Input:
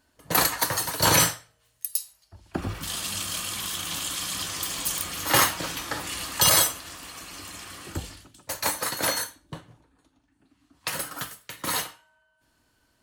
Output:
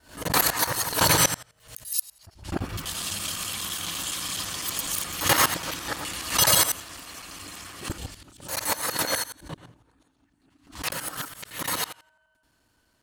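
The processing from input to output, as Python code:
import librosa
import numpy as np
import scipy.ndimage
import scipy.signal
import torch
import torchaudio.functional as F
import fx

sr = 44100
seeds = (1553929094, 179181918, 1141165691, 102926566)

y = fx.local_reverse(x, sr, ms=84.0)
y = fx.pre_swell(y, sr, db_per_s=140.0)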